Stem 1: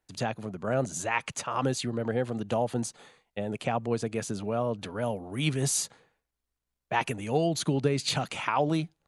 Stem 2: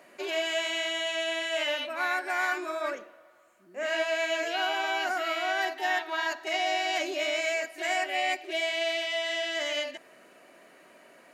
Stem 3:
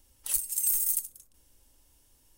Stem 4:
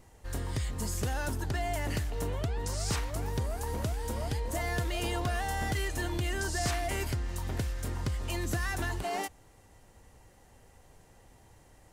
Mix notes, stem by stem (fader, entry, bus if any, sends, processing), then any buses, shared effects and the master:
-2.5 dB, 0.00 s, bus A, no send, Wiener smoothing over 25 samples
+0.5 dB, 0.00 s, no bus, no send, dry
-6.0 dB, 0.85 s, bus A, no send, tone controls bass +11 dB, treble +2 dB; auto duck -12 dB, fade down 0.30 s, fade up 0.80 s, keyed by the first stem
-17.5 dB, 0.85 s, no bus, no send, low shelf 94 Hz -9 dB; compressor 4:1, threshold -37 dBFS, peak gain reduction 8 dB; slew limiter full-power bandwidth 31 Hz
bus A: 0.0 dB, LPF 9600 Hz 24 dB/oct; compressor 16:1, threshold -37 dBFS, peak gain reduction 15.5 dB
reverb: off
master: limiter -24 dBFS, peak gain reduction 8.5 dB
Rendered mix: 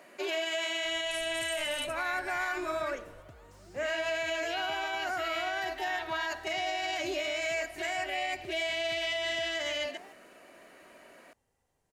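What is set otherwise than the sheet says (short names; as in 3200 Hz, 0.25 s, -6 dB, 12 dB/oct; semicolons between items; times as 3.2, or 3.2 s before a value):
stem 1: muted; stem 4: missing compressor 4:1, threshold -37 dBFS, peak gain reduction 8 dB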